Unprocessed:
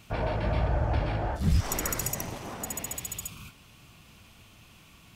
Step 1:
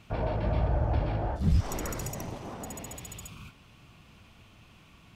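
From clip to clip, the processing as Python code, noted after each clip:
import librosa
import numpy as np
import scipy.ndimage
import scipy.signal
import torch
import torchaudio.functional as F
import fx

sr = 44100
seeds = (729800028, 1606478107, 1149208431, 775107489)

y = fx.lowpass(x, sr, hz=2900.0, slope=6)
y = fx.dynamic_eq(y, sr, hz=1800.0, q=0.88, threshold_db=-50.0, ratio=4.0, max_db=-5)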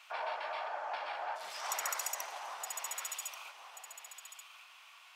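y = scipy.signal.sosfilt(scipy.signal.butter(4, 860.0, 'highpass', fs=sr, output='sos'), x)
y = y + 10.0 ** (-9.5 / 20.0) * np.pad(y, (int(1134 * sr / 1000.0), 0))[:len(y)]
y = F.gain(torch.from_numpy(y), 3.0).numpy()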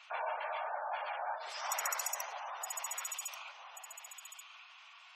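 y = fx.spec_gate(x, sr, threshold_db=-20, keep='strong')
y = F.gain(torch.from_numpy(y), 1.0).numpy()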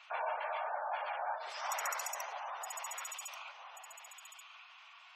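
y = fx.high_shelf(x, sr, hz=4800.0, db=-7.5)
y = F.gain(torch.from_numpy(y), 1.0).numpy()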